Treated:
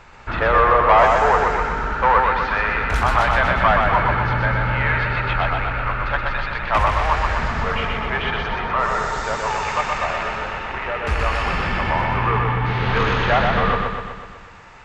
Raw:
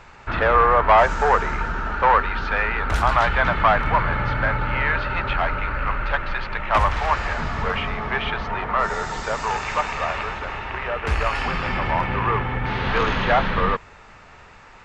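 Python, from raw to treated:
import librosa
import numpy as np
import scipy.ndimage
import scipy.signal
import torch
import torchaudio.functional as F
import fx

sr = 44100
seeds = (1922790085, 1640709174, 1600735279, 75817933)

y = fx.echo_feedback(x, sr, ms=124, feedback_pct=59, wet_db=-3.5)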